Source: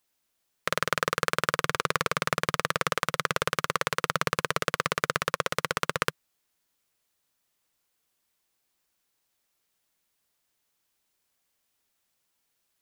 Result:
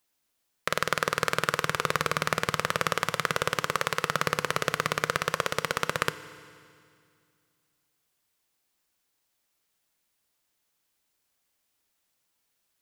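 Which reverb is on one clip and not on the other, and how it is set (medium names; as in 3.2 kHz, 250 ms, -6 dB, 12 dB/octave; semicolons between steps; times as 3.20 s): FDN reverb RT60 2.2 s, low-frequency decay 1.25×, high-frequency decay 1×, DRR 13 dB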